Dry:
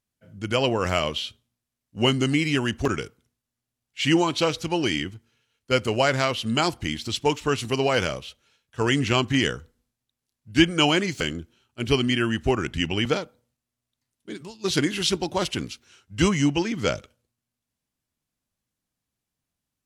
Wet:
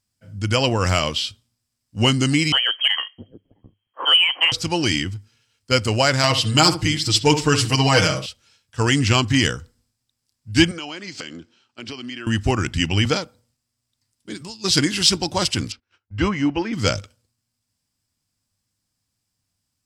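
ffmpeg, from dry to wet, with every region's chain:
-filter_complex "[0:a]asettb=1/sr,asplit=3[a][b][c];[a]atrim=end=2.524[d];[b]atrim=start=2.52:end=4.52,asetpts=PTS-STARTPTS,afade=t=in:d=0.004:c=qsin,afade=t=out:st=1.996:d=0.004:c=qsin,lowpass=f=2.8k:t=q:w=0.5098,lowpass=f=2.8k:t=q:w=0.6013,lowpass=f=2.8k:t=q:w=0.9,lowpass=f=2.8k:t=q:w=2.563,afreqshift=-3300,acrossover=split=360[e][f];[e]adelay=660[g];[g][f]amix=inputs=2:normalize=0,atrim=end_sample=88200[h];[c]atrim=start=4.516[i];[d][h]acrossfade=d=0.004:c1=hsin:c2=qsin[j];[j][i]acrossfade=d=0.004:c1=qsin:c2=hsin,asettb=1/sr,asplit=3[k][l][m];[k]atrim=end=6.234[n];[l]atrim=start=6.23:end=8.26,asetpts=PTS-STARTPTS,afade=t=in:d=0.004:c=qsin,afade=t=out:st=2.026:d=0.004:c=qsin,aecho=1:1:6.4:0.99,atrim=end_sample=89523,asplit=2[o][p];[p]adelay=67,lowpass=f=1.4k:p=1,volume=-9dB,asplit=2[q][r];[r]adelay=67,lowpass=f=1.4k:p=1,volume=0.24,asplit=2[s][t];[t]adelay=67,lowpass=f=1.4k:p=1,volume=0.24[u];[o][q][s][u]amix=inputs=4:normalize=0,atrim=end_sample=89523[v];[m]atrim=start=8.256[w];[n][v]acrossfade=d=0.004:c1=hsin:c2=qsin[x];[x][w]acrossfade=d=0.004:c1=qsin:c2=hsin,asettb=1/sr,asplit=3[y][z][aa];[y]atrim=end=10.714[ab];[z]atrim=start=10.71:end=12.27,asetpts=PTS-STARTPTS,afade=t=in:d=0.004:c=qsin,afade=t=out:st=1.556:d=0.004:c=qsin,acrossover=split=190 6200:gain=0.0891 1 0.1[ac][ad][ae];[ac][ad][ae]amix=inputs=3:normalize=0,acompressor=threshold=-35dB:ratio=4:attack=3.2:release=140:knee=1:detection=peak[af];[aa]atrim=start=12.266[ag];[ab][af]acrossfade=d=0.004:c1=hsin:c2=qsin[ah];[ah][ag]acrossfade=d=0.004:c1=qsin:c2=hsin,asettb=1/sr,asplit=3[ai][aj][ak];[ai]atrim=end=15.724[al];[aj]atrim=start=15.72:end=16.73,asetpts=PTS-STARTPTS,afade=t=in:d=0.004:c=qsin,afade=t=out:st=1.006:d=0.004:c=qsin,agate=range=-22dB:threshold=-53dB:ratio=16:release=100:detection=peak,lowpass=2k,equalizer=f=150:t=o:w=0.82:g=-10[am];[ak]atrim=start=16.726[an];[al][am]acrossfade=d=0.004:c1=hsin:c2=qsin[ao];[ao][an]acrossfade=d=0.004:c1=qsin:c2=hsin,equalizer=f=400:t=o:w=0.33:g=-6,equalizer=f=630:t=o:w=0.33:g=-3,equalizer=f=5k:t=o:w=0.33:g=11,equalizer=f=8k:t=o:w=0.33:g=8,acontrast=28,equalizer=f=100:w=4.6:g=10,volume=-1dB"

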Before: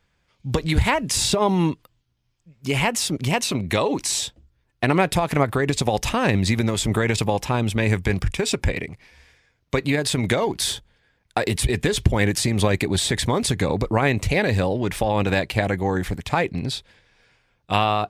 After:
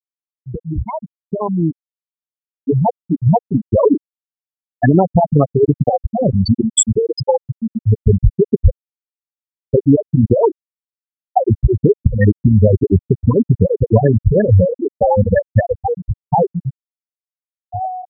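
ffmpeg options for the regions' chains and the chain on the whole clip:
-filter_complex "[0:a]asettb=1/sr,asplit=3[a][b][c];[a]atrim=end=6.084[d];[b]atrim=start=6.08:end=7.97,asetpts=PTS-STARTPTS,afade=t=in:d=0.004:c=qsin,afade=t=out:st=1.886:d=0.004:c=qsin,lowpass=7.7k,bass=f=250:g=-4,treble=f=4k:g=14[e];[c]atrim=start=7.966[f];[d][e]acrossfade=d=0.004:c1=hsin:c2=qsin[g];[g][f]acrossfade=d=0.004:c1=qsin:c2=hsin,afftfilt=real='re*gte(hypot(re,im),0.562)':imag='im*gte(hypot(re,im),0.562)':win_size=1024:overlap=0.75,alimiter=limit=-14.5dB:level=0:latency=1:release=232,dynaudnorm=f=830:g=5:m=15dB,volume=1dB"

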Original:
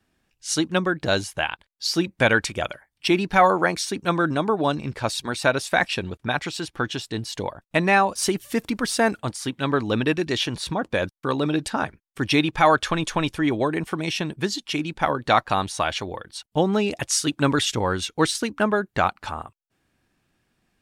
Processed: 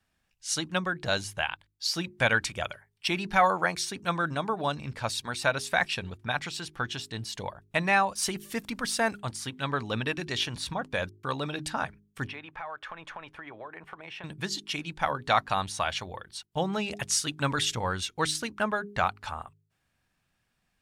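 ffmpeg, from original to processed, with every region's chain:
-filter_complex "[0:a]asettb=1/sr,asplit=3[a][b][c];[a]atrim=end=12.274[d];[b]atrim=start=12.27:end=14.24,asetpts=PTS-STARTPTS,afade=t=in:d=0.004:c=qsin,afade=t=out:st=1.966:d=0.004:c=qsin,acrossover=split=400 2400:gain=0.2 1 0.0708[e][f][g];[e][f][g]amix=inputs=3:normalize=0,acompressor=threshold=-32dB:ratio=4:attack=3.2:release=140:knee=1:detection=peak[h];[c]atrim=start=14.236[i];[d][h]acrossfade=d=0.004:c1=hsin:c2=qsin[j];[j][i]acrossfade=d=0.004:c1=qsin:c2=hsin,equalizer=f=330:t=o:w=1.2:g=-9.5,bandreject=f=51.19:t=h:w=4,bandreject=f=102.38:t=h:w=4,bandreject=f=153.57:t=h:w=4,bandreject=f=204.76:t=h:w=4,bandreject=f=255.95:t=h:w=4,bandreject=f=307.14:t=h:w=4,bandreject=f=358.33:t=h:w=4,bandreject=f=409.52:t=h:w=4,volume=-4dB"

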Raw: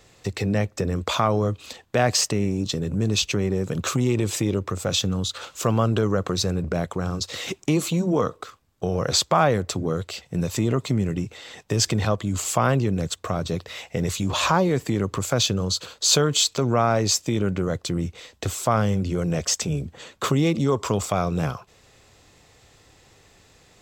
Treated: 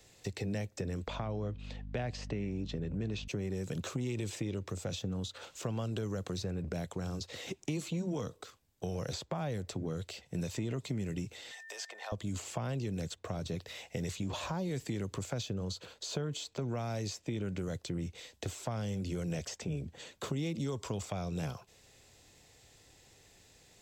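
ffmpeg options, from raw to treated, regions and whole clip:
-filter_complex "[0:a]asettb=1/sr,asplit=3[a][b][c];[a]atrim=end=1.074[d];[b]atrim=start=1.07:end=3.28,asetpts=PTS-STARTPTS,afade=t=in:d=0.004:c=qsin,afade=t=out:st=2.206:d=0.004:c=qsin,lowpass=2.6k,aeval=exprs='val(0)+0.02*(sin(2*PI*50*n/s)+sin(2*PI*2*50*n/s)/2+sin(2*PI*3*50*n/s)/3+sin(2*PI*4*50*n/s)/4+sin(2*PI*5*50*n/s)/5)':c=same[e];[c]atrim=start=3.276[f];[d][e]acrossfade=d=0.004:c1=hsin:c2=qsin[g];[g][f]acrossfade=d=0.004:c1=qsin:c2=hsin,asettb=1/sr,asplit=3[h][i][j];[h]atrim=end=11.514[k];[i]atrim=start=11.51:end=12.12,asetpts=PTS-STARTPTS,afade=t=in:d=0.004:c=qsin,afade=t=out:st=0.606:d=0.004:c=qsin,highpass=f=690:w=0.5412,highpass=f=690:w=1.3066,aeval=exprs='val(0)+0.0112*sin(2*PI*1800*n/s)':c=same[l];[j]atrim=start=12.116[m];[k][l]acrossfade=d=0.004:c1=hsin:c2=qsin[n];[n][m]acrossfade=d=0.004:c1=qsin:c2=hsin,highshelf=f=4.7k:g=6.5,acrossover=split=200|1200|2700|7600[o][p][q][r][s];[o]acompressor=threshold=-29dB:ratio=4[t];[p]acompressor=threshold=-30dB:ratio=4[u];[q]acompressor=threshold=-42dB:ratio=4[v];[r]acompressor=threshold=-41dB:ratio=4[w];[s]acompressor=threshold=-55dB:ratio=4[x];[t][u][v][w][x]amix=inputs=5:normalize=0,equalizer=f=1.2k:w=3.2:g=-7.5,volume=-8dB"

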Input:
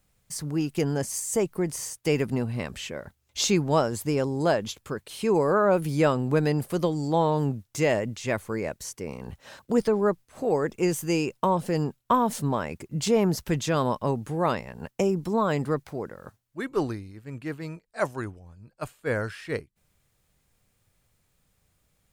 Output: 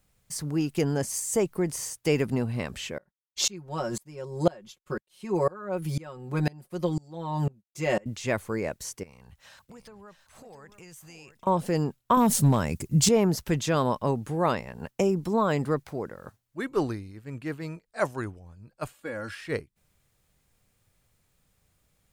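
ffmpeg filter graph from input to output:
-filter_complex "[0:a]asettb=1/sr,asplit=3[a][b][c];[a]atrim=end=2.984[d];[b]atrim=start=2.98:end=8.06,asetpts=PTS-STARTPTS,afade=t=in:d=0.004:c=qsin,afade=t=out:st=5.076:d=0.004:c=qsin,aecho=1:1:5.5:0.9,atrim=end_sample=224028,agate=range=-33dB:threshold=-36dB:ratio=3:release=100:detection=peak,aeval=exprs='val(0)*pow(10,-28*if(lt(mod(-2*n/s,1),2*abs(-2)/1000),1-mod(-2*n/s,1)/(2*abs(-2)/1000),(mod(-2*n/s,1)-2*abs(-2)/1000)/(1-2*abs(-2)/1000))/20)':c=same[e];[c]atrim=start=8.056[f];[d][e]acrossfade=d=0.004:c1=hsin:c2=qsin[g];[g][f]acrossfade=d=0.004:c1=qsin:c2=hsin,asettb=1/sr,asplit=3[h][i][j];[h]atrim=end=9.034[k];[i]atrim=start=9.03:end=11.47,asetpts=PTS-STARTPTS,afade=t=in:d=0.004:c=qsin,afade=t=out:st=2.436:d=0.004:c=qsin,equalizer=f=340:w=0.65:g=-13.5,acompressor=threshold=-48dB:ratio=4:attack=3.2:release=140:knee=1:detection=peak,aecho=1:1:675:0.282,atrim=end_sample=107604[l];[j]atrim=start=11.466[m];[k][l]acrossfade=d=0.004:c1=hsin:c2=qsin[n];[n][m]acrossfade=d=0.004:c1=qsin:c2=hsin,asettb=1/sr,asplit=3[o][p][q];[o]atrim=end=12.174[r];[p]atrim=start=12.17:end=13.09,asetpts=PTS-STARTPTS,afade=t=in:d=0.004:c=qsin,afade=t=out:st=0.916:d=0.004:c=qsin,bass=f=250:g=10,treble=f=4k:g=11,asoftclip=type=hard:threshold=-13.5dB[s];[q]atrim=start=13.086[t];[r][s]acrossfade=d=0.004:c1=hsin:c2=qsin[u];[u][t]acrossfade=d=0.004:c1=qsin:c2=hsin,asettb=1/sr,asplit=3[v][w][x];[v]atrim=end=18.944[y];[w]atrim=start=18.94:end=19.35,asetpts=PTS-STARTPTS,afade=t=in:d=0.004:c=qsin,afade=t=out:st=0.406:d=0.004:c=qsin,highpass=58,aecho=1:1:3.6:0.69,atrim=end_sample=18081,acompressor=threshold=-30dB:ratio=12:attack=3.2:release=140:knee=1:detection=peak[z];[x]atrim=start=19.346[aa];[y][z]acrossfade=d=0.004:c1=hsin:c2=qsin[ab];[ab][aa]acrossfade=d=0.004:c1=qsin:c2=hsin"

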